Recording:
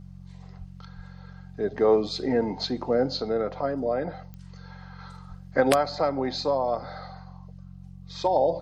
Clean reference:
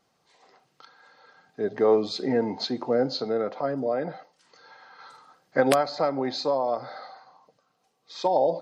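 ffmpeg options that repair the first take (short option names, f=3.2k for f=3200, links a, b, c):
-filter_complex "[0:a]adeclick=t=4,bandreject=f=45.5:t=h:w=4,bandreject=f=91:t=h:w=4,bandreject=f=136.5:t=h:w=4,bandreject=f=182:t=h:w=4,asplit=3[a][b][c];[a]afade=t=out:st=0.58:d=0.02[d];[b]highpass=f=140:w=0.5412,highpass=f=140:w=1.3066,afade=t=in:st=0.58:d=0.02,afade=t=out:st=0.7:d=0.02[e];[c]afade=t=in:st=0.7:d=0.02[f];[d][e][f]amix=inputs=3:normalize=0,asplit=3[g][h][i];[g]afade=t=out:st=0.95:d=0.02[j];[h]highpass=f=140:w=0.5412,highpass=f=140:w=1.3066,afade=t=in:st=0.95:d=0.02,afade=t=out:st=1.07:d=0.02[k];[i]afade=t=in:st=1.07:d=0.02[l];[j][k][l]amix=inputs=3:normalize=0,asplit=3[m][n][o];[m]afade=t=out:st=5.28:d=0.02[p];[n]highpass=f=140:w=0.5412,highpass=f=140:w=1.3066,afade=t=in:st=5.28:d=0.02,afade=t=out:st=5.4:d=0.02[q];[o]afade=t=in:st=5.4:d=0.02[r];[p][q][r]amix=inputs=3:normalize=0"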